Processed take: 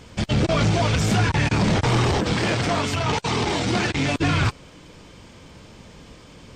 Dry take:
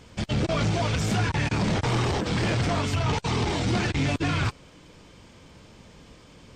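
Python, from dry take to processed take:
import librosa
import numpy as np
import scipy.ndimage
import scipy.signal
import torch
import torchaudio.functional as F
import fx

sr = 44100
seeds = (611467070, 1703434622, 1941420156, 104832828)

y = fx.low_shelf(x, sr, hz=130.0, db=-10.0, at=(2.33, 4.18))
y = F.gain(torch.from_numpy(y), 5.0).numpy()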